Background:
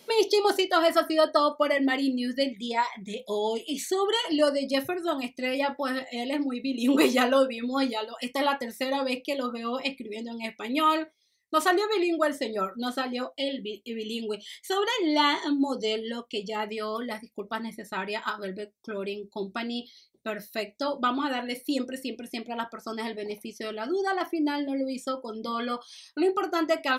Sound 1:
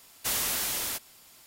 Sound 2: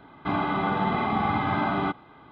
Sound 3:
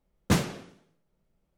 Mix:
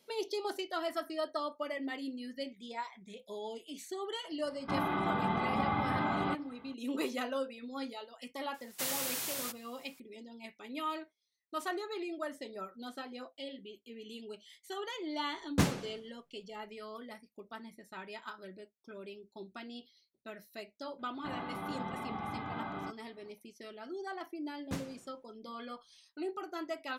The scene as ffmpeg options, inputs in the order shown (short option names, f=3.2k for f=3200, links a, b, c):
-filter_complex "[2:a]asplit=2[a][b];[3:a]asplit=2[c][d];[0:a]volume=-14dB[e];[1:a]afreqshift=95[f];[a]atrim=end=2.31,asetpts=PTS-STARTPTS,volume=-7dB,afade=t=in:d=0.004:c=hsin,afade=t=out:st=2.306:d=0.004:c=hsin,adelay=4430[g];[f]atrim=end=1.46,asetpts=PTS-STARTPTS,volume=-7dB,afade=t=in:d=0.004:c=hsin,afade=t=out:st=1.456:d=0.004:c=hsin,adelay=8540[h];[c]atrim=end=1.57,asetpts=PTS-STARTPTS,volume=-5dB,afade=t=in:d=0.004:c=hsin,afade=t=out:st=1.566:d=0.004:c=hsin,adelay=15280[i];[b]atrim=end=2.31,asetpts=PTS-STARTPTS,volume=-15dB,afade=t=in:d=0.004:c=hsin,afade=t=out:st=2.306:d=0.004:c=hsin,adelay=20990[j];[d]atrim=end=1.57,asetpts=PTS-STARTPTS,volume=-16.5dB,afade=t=in:d=0.004:c=hsin,afade=t=out:st=1.566:d=0.004:c=hsin,adelay=24410[k];[e][g][h][i][j][k]amix=inputs=6:normalize=0"